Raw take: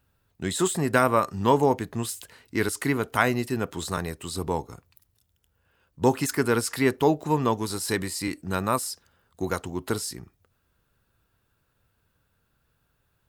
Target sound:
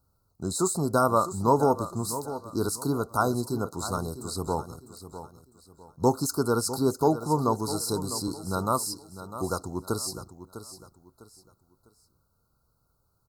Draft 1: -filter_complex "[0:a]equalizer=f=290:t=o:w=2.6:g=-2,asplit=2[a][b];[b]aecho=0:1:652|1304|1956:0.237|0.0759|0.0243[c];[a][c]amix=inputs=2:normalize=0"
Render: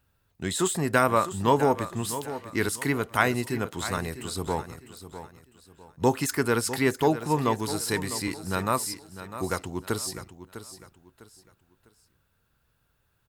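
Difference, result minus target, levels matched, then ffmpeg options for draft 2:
2000 Hz band +11.0 dB
-filter_complex "[0:a]asuperstop=centerf=2400:order=20:qfactor=0.93,equalizer=f=290:t=o:w=2.6:g=-2,asplit=2[a][b];[b]aecho=0:1:652|1304|1956:0.237|0.0759|0.0243[c];[a][c]amix=inputs=2:normalize=0"

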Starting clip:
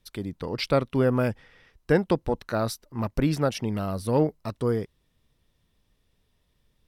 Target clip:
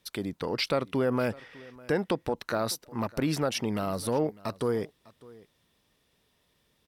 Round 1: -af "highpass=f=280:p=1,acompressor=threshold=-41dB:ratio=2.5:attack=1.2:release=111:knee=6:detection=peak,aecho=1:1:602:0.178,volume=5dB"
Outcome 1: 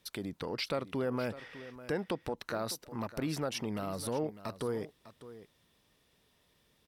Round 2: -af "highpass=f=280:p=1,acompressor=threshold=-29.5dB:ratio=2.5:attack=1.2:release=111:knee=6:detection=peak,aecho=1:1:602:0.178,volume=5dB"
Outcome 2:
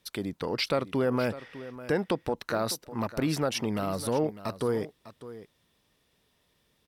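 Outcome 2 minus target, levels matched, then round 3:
echo-to-direct +7 dB
-af "highpass=f=280:p=1,acompressor=threshold=-29.5dB:ratio=2.5:attack=1.2:release=111:knee=6:detection=peak,aecho=1:1:602:0.0794,volume=5dB"

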